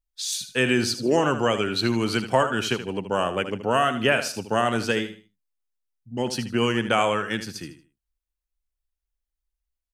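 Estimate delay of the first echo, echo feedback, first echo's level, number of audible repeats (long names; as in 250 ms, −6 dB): 77 ms, 28%, −11.0 dB, 3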